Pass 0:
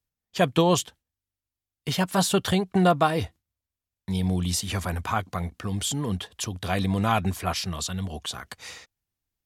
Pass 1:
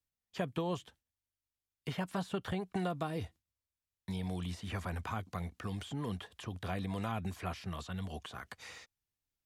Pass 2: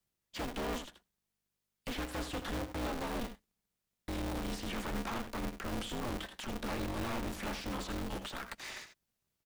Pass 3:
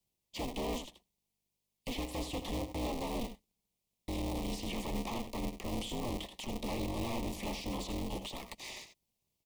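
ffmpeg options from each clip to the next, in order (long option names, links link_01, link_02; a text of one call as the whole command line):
ffmpeg -i in.wav -filter_complex "[0:a]acrossover=split=2600[link_01][link_02];[link_02]acompressor=threshold=-43dB:ratio=4:attack=1:release=60[link_03];[link_01][link_03]amix=inputs=2:normalize=0,equalizer=frequency=4200:width=0.32:gain=3,acrossover=split=460|2500|7700[link_04][link_05][link_06][link_07];[link_04]acompressor=threshold=-28dB:ratio=4[link_08];[link_05]acompressor=threshold=-33dB:ratio=4[link_09];[link_06]acompressor=threshold=-46dB:ratio=4[link_10];[link_07]acompressor=threshold=-55dB:ratio=4[link_11];[link_08][link_09][link_10][link_11]amix=inputs=4:normalize=0,volume=-7.5dB" out.wav
ffmpeg -i in.wav -af "asoftclip=type=hard:threshold=-40dB,aecho=1:1:81:0.335,aeval=exprs='val(0)*sgn(sin(2*PI*120*n/s))':channel_layout=same,volume=5dB" out.wav
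ffmpeg -i in.wav -af "asuperstop=centerf=1500:order=4:qfactor=1.4,volume=1dB" out.wav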